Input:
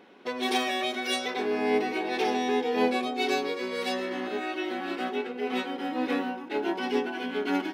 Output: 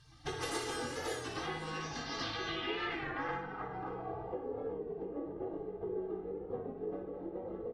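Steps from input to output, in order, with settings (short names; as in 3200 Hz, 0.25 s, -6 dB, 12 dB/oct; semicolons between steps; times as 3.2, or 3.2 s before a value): EQ curve 230 Hz 0 dB, 340 Hz +3 dB, 3900 Hz +11 dB; spectral gate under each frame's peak -20 dB weak; tilt -5.5 dB/oct; reverb RT60 2.1 s, pre-delay 18 ms, DRR 11 dB; low-pass sweep 10000 Hz -> 490 Hz, 1.45–4.6; notch 2400 Hz, Q 18; early reflections 21 ms -7.5 dB, 58 ms -6 dB; compressor 3:1, threshold -44 dBFS, peak gain reduction 11.5 dB; comb 2.5 ms, depth 92%; record warp 33 1/3 rpm, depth 100 cents; gain +4.5 dB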